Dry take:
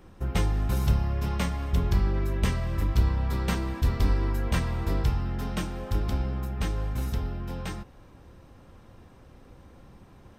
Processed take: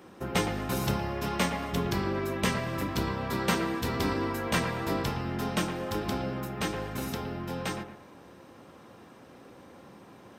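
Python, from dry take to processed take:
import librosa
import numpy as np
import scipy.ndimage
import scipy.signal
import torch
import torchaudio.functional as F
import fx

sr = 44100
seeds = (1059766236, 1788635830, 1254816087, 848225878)

y = scipy.signal.sosfilt(scipy.signal.butter(2, 210.0, 'highpass', fs=sr, output='sos'), x)
y = fx.echo_bbd(y, sr, ms=114, stages=2048, feedback_pct=32, wet_db=-9)
y = y * librosa.db_to_amplitude(4.5)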